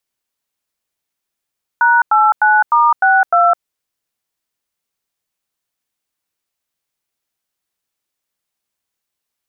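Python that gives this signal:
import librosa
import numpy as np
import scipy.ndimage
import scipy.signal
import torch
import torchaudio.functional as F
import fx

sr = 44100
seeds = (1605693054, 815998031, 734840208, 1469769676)

y = fx.dtmf(sr, digits='#89*62', tone_ms=209, gap_ms=94, level_db=-10.5)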